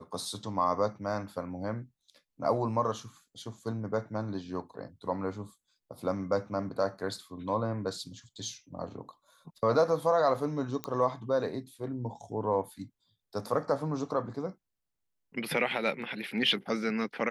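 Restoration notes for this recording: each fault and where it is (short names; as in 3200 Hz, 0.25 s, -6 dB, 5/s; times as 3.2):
10.84 pop -18 dBFS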